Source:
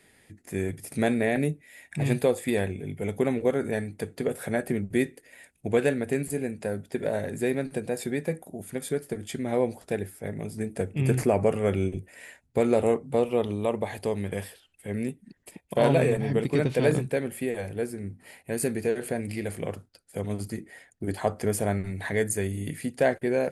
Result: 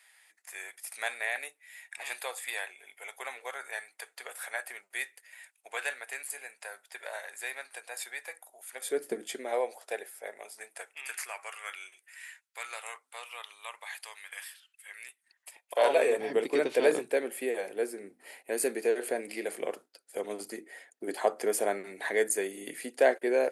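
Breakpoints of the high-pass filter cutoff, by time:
high-pass filter 24 dB per octave
0:08.70 880 Hz
0:09.06 250 Hz
0:09.62 560 Hz
0:10.24 560 Hz
0:11.20 1,200 Hz
0:15.09 1,200 Hz
0:16.23 340 Hz

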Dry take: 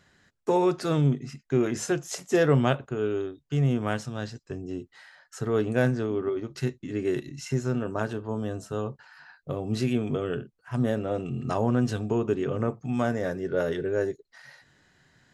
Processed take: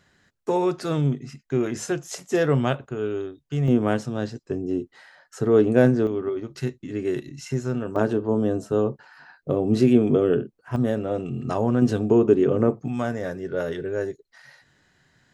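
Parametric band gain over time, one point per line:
parametric band 340 Hz 2.3 octaves
+0.5 dB
from 0:03.68 +9.5 dB
from 0:06.07 +1.5 dB
from 0:07.96 +11.5 dB
from 0:10.76 +3.5 dB
from 0:11.82 +10 dB
from 0:12.88 −0.5 dB

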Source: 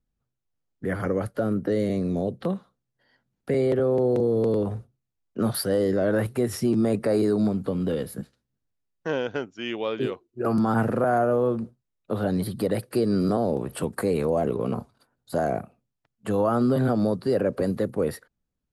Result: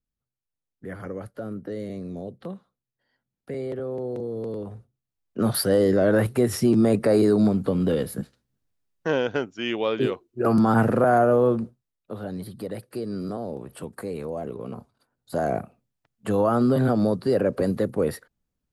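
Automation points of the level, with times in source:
0:04.76 −8.5 dB
0:05.57 +3.5 dB
0:11.53 +3.5 dB
0:12.17 −8 dB
0:14.80 −8 dB
0:15.56 +1.5 dB

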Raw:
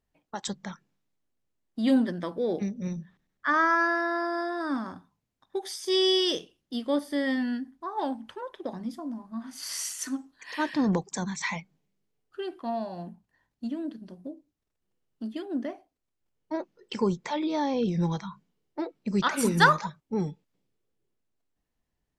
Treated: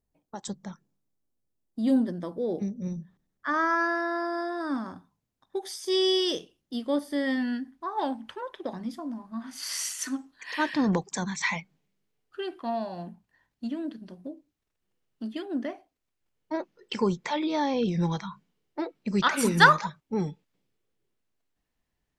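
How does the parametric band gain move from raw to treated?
parametric band 2,300 Hz 2.3 octaves
0:02.99 −10.5 dB
0:03.78 −2.5 dB
0:07.07 −2.5 dB
0:07.69 +4 dB

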